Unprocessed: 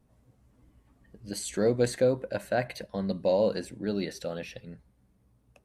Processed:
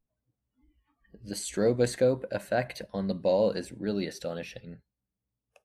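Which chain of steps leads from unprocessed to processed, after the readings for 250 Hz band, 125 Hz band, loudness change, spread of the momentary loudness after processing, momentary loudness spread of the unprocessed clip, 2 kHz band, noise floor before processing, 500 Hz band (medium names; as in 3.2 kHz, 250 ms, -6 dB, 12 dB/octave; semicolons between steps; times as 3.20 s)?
0.0 dB, 0.0 dB, 0.0 dB, 14 LU, 14 LU, 0.0 dB, -67 dBFS, 0.0 dB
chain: spectral noise reduction 22 dB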